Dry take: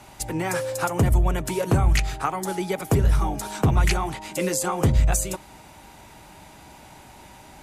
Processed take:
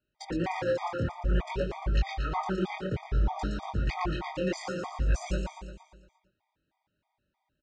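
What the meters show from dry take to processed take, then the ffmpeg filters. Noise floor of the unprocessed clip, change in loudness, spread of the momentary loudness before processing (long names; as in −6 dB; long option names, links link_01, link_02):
−48 dBFS, −8.5 dB, 8 LU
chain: -filter_complex "[0:a]agate=range=-34dB:threshold=-35dB:ratio=16:detection=peak,lowpass=frequency=4500:width=0.5412,lowpass=frequency=4500:width=1.3066,areverse,acompressor=threshold=-27dB:ratio=16,areverse,flanger=delay=19.5:depth=7.3:speed=0.58,asplit=2[link_01][link_02];[link_02]aecho=0:1:116|232|348|464|580|696|812|928:0.562|0.326|0.189|0.11|0.0636|0.0369|0.0214|0.0124[link_03];[link_01][link_03]amix=inputs=2:normalize=0,afftfilt=real='re*gt(sin(2*PI*3.2*pts/sr)*(1-2*mod(floor(b*sr/1024/630),2)),0)':imag='im*gt(sin(2*PI*3.2*pts/sr)*(1-2*mod(floor(b*sr/1024/630),2)),0)':win_size=1024:overlap=0.75,volume=4.5dB"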